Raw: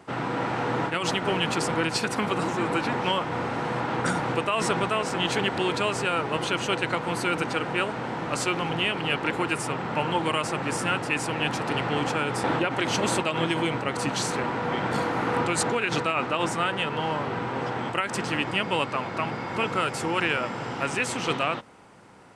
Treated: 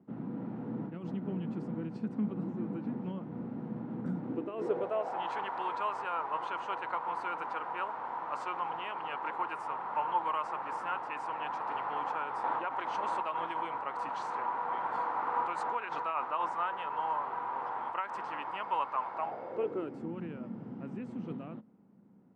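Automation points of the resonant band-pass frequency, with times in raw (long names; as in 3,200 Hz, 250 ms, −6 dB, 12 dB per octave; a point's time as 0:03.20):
resonant band-pass, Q 3.7
0:04.17 210 Hz
0:05.31 980 Hz
0:19.09 980 Hz
0:20.14 210 Hz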